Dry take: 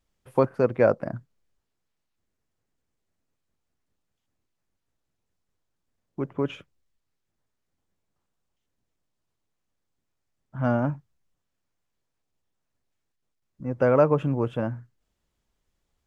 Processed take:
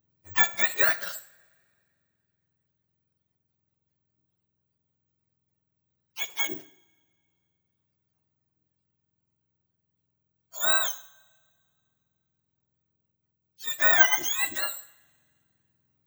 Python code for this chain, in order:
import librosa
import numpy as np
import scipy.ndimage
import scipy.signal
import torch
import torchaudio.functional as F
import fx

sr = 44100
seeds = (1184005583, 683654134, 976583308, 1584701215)

y = fx.octave_mirror(x, sr, pivot_hz=960.0)
y = (np.kron(scipy.signal.resample_poly(y, 1, 2), np.eye(2)[0]) * 2)[:len(y)]
y = fx.rev_double_slope(y, sr, seeds[0], early_s=0.62, late_s=2.3, knee_db=-21, drr_db=12.5)